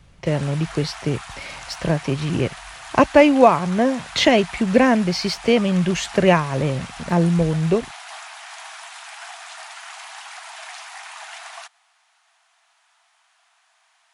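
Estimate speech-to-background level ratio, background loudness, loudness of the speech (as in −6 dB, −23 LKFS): 17.5 dB, −36.5 LKFS, −19.0 LKFS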